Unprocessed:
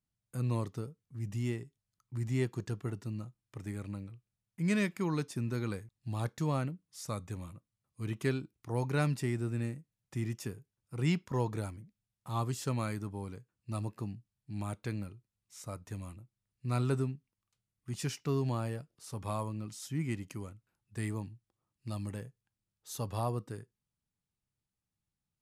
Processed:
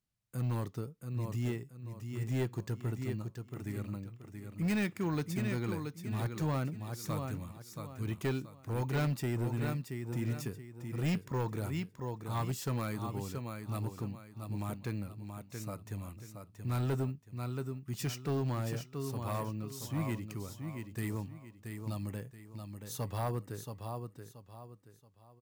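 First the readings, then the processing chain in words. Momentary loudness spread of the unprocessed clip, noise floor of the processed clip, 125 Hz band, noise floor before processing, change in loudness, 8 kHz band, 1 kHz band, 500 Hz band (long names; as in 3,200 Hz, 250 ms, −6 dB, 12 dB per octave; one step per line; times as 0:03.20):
15 LU, −60 dBFS, +0.5 dB, below −85 dBFS, −0.5 dB, −0.5 dB, 0.0 dB, −0.5 dB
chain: bad sample-rate conversion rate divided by 2×, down none, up hold
repeating echo 678 ms, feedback 32%, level −7 dB
gain into a clipping stage and back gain 27.5 dB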